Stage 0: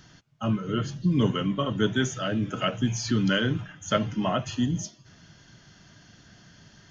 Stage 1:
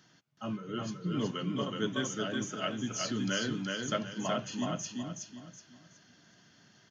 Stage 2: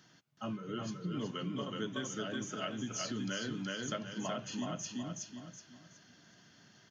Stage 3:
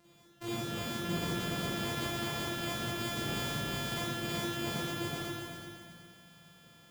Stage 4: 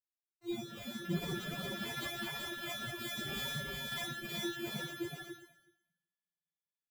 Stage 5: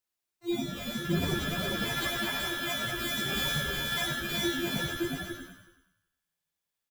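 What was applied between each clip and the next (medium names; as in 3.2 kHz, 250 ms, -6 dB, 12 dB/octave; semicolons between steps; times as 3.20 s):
high-pass 170 Hz 12 dB/octave; dynamic bell 6.4 kHz, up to +5 dB, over -47 dBFS, Q 0.93; on a send: feedback delay 372 ms, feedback 32%, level -3 dB; on the sum: trim -8.5 dB
compression 3:1, threshold -36 dBFS, peak gain reduction 7.5 dB
sorted samples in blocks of 128 samples; Schroeder reverb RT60 1.6 s, DRR -9 dB; trim -3 dB
expander on every frequency bin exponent 3; comb 5.3 ms, depth 62%; trim +1 dB
hum notches 60/120/180/240/300/360 Hz; frequency-shifting echo 96 ms, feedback 44%, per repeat -80 Hz, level -7 dB; trim +8 dB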